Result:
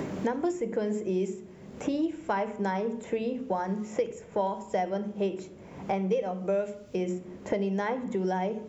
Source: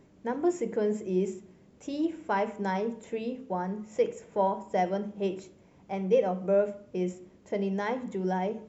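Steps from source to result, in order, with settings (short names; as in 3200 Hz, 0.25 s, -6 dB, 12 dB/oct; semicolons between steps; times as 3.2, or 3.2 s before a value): notches 60/120/180/240/300/360/420 Hz; three-band squash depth 100%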